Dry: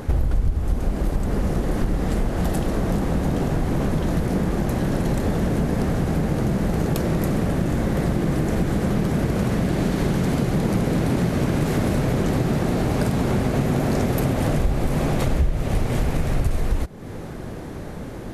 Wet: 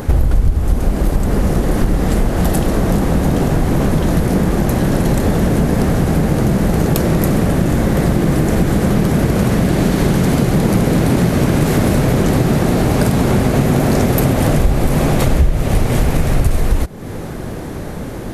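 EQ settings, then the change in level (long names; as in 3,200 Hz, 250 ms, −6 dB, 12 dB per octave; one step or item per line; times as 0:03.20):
high-shelf EQ 10,000 Hz +7.5 dB
+7.5 dB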